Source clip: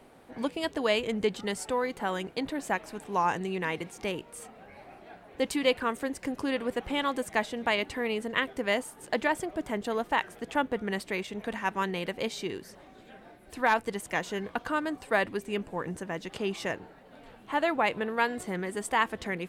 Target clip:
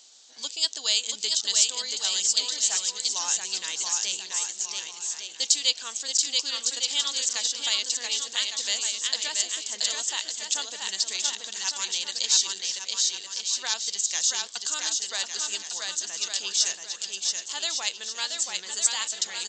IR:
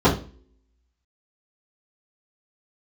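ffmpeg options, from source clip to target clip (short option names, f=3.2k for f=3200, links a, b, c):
-filter_complex "[0:a]aderivative,aecho=1:1:680|1156|1489|1722|1886:0.631|0.398|0.251|0.158|0.1,asplit=2[a][b];[b]alimiter=level_in=4.5dB:limit=-24dB:level=0:latency=1:release=339,volume=-4.5dB,volume=-2dB[c];[a][c]amix=inputs=2:normalize=0,aexciter=amount=10:drive=4.8:freq=3.3k,aresample=16000,aresample=44100"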